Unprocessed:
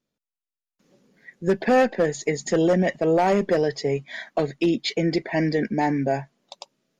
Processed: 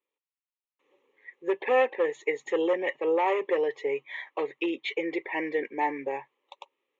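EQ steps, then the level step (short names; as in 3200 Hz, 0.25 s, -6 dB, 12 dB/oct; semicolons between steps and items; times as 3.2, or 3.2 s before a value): BPF 530–3200 Hz; fixed phaser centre 1000 Hz, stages 8; +1.5 dB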